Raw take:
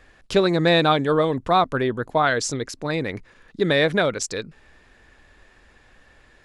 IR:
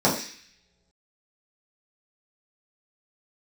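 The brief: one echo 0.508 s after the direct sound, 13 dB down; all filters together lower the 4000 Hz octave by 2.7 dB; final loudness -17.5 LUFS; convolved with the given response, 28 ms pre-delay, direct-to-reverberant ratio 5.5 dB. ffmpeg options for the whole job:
-filter_complex "[0:a]equalizer=f=4k:t=o:g=-3,aecho=1:1:508:0.224,asplit=2[a][b];[1:a]atrim=start_sample=2205,adelay=28[c];[b][c]afir=irnorm=-1:irlink=0,volume=-23dB[d];[a][d]amix=inputs=2:normalize=0,volume=1.5dB"

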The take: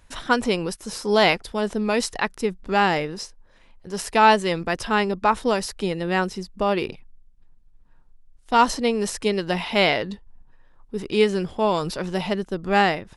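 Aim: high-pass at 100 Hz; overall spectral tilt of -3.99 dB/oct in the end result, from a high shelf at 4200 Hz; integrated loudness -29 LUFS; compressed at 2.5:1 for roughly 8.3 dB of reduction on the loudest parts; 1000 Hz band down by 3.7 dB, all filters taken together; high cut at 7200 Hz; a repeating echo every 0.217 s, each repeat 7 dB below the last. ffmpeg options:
-af "highpass=100,lowpass=7.2k,equalizer=f=1k:t=o:g=-5,highshelf=f=4.2k:g=5,acompressor=threshold=-26dB:ratio=2.5,aecho=1:1:217|434|651|868|1085:0.447|0.201|0.0905|0.0407|0.0183,volume=-0.5dB"

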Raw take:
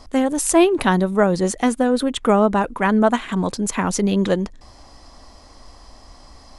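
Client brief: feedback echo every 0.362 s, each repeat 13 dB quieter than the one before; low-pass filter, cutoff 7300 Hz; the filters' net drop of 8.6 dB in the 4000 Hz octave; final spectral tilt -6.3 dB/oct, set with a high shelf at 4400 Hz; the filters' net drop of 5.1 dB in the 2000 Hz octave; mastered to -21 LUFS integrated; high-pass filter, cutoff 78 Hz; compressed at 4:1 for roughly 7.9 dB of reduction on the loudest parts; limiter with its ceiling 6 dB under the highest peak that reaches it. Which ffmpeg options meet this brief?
-af "highpass=78,lowpass=7.3k,equalizer=f=2k:t=o:g=-4.5,equalizer=f=4k:t=o:g=-5.5,highshelf=f=4.4k:g=-7.5,acompressor=threshold=-20dB:ratio=4,alimiter=limit=-16.5dB:level=0:latency=1,aecho=1:1:362|724|1086:0.224|0.0493|0.0108,volume=5dB"

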